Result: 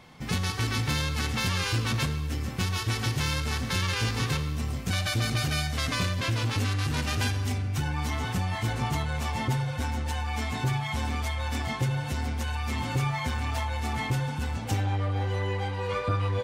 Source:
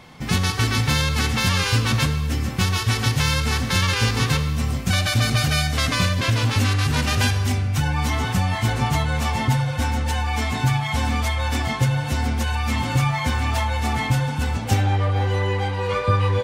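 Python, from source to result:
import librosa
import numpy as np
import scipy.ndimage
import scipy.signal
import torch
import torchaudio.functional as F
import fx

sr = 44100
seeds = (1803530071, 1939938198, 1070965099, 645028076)

y = fx.transformer_sat(x, sr, knee_hz=290.0)
y = y * 10.0 ** (-6.5 / 20.0)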